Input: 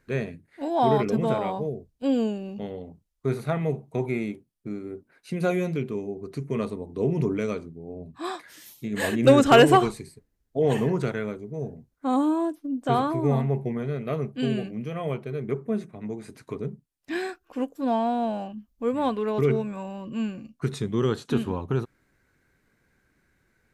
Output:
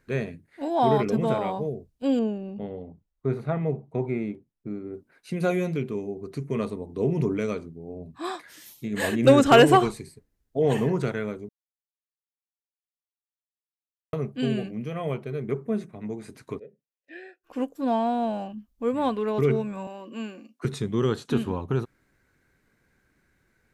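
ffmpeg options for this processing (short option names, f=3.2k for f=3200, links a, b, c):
-filter_complex "[0:a]asettb=1/sr,asplit=3[a][b][c];[a]atrim=end=2.194[d];[b]atrim=start=2.19:end=4.94,asetpts=PTS-STARTPTS,afade=t=in:d=0.004:c=qsin,afade=t=out:st=2.746:d=0.004:c=qsin,lowpass=f=1.3k:p=1[e];[c]atrim=start=4.936[f];[d][e]acrossfade=d=0.004:c1=hsin:c2=qsin[g];[g][f]acrossfade=d=0.004:c1=qsin:c2=hsin,asplit=3[h][i][j];[h]afade=t=out:st=16.58:d=0.02[k];[i]asplit=3[l][m][n];[l]bandpass=f=530:t=q:w=8,volume=0dB[o];[m]bandpass=f=1.84k:t=q:w=8,volume=-6dB[p];[n]bandpass=f=2.48k:t=q:w=8,volume=-9dB[q];[o][p][q]amix=inputs=3:normalize=0,afade=t=in:st=16.58:d=0.02,afade=t=out:st=17.43:d=0.02[r];[j]afade=t=in:st=17.43:d=0.02[s];[k][r][s]amix=inputs=3:normalize=0,asettb=1/sr,asplit=3[t][u][v];[t]atrim=end=19.874[w];[u]atrim=start=19.87:end=20.65,asetpts=PTS-STARTPTS,afade=t=in:d=0.004:c=qsin,afade=t=out:st=0.776:d=0.004:c=qsin,highpass=f=260:w=0.5412,highpass=f=260:w=1.3066[x];[v]atrim=start=20.646[y];[w][x]acrossfade=d=0.004:c1=hsin:c2=qsin[z];[z][y]acrossfade=d=0.004:c1=qsin:c2=hsin,asplit=3[aa][ab][ac];[aa]atrim=end=11.49,asetpts=PTS-STARTPTS,afade=t=out:st=11.486:d=0.004:c=hsin[ad];[ab]atrim=start=11.49:end=14.13,asetpts=PTS-STARTPTS,volume=0[ae];[ac]atrim=start=14.13,asetpts=PTS-STARTPTS,afade=t=in:d=0.004:c=hsin[af];[ad][ae][af]concat=n=3:v=0:a=1"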